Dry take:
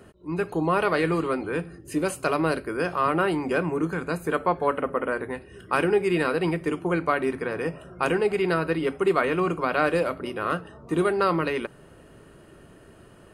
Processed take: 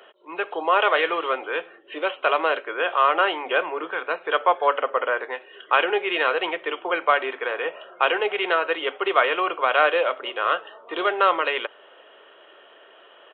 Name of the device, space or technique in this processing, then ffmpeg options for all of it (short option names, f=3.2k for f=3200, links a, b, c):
musical greeting card: -af "aresample=8000,aresample=44100,highpass=f=510:w=0.5412,highpass=f=510:w=1.3066,equalizer=f=3.2k:t=o:w=0.31:g=10,volume=5.5dB"